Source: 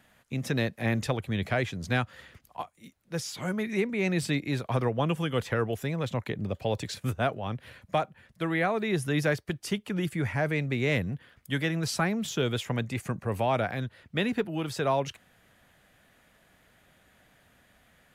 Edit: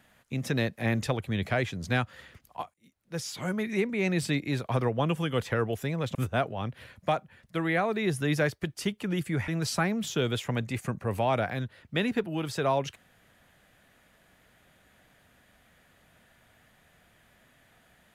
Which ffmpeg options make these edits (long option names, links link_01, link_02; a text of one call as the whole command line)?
ffmpeg -i in.wav -filter_complex "[0:a]asplit=4[link_01][link_02][link_03][link_04];[link_01]atrim=end=2.74,asetpts=PTS-STARTPTS,afade=type=out:start_time=2.736:duration=0.004:curve=hsin:silence=0.0707946[link_05];[link_02]atrim=start=2.74:end=6.152,asetpts=PTS-STARTPTS,afade=type=in:duration=0.54:silence=0.0707946[link_06];[link_03]atrim=start=7.008:end=10.342[link_07];[link_04]atrim=start=11.688[link_08];[link_05][link_06]concat=n=2:v=0:a=1[link_09];[link_09][link_07]acrossfade=duration=0.004:curve1=hsin:curve2=hsin[link_10];[link_10][link_08]acrossfade=duration=0.004:curve1=hsin:curve2=hsin" out.wav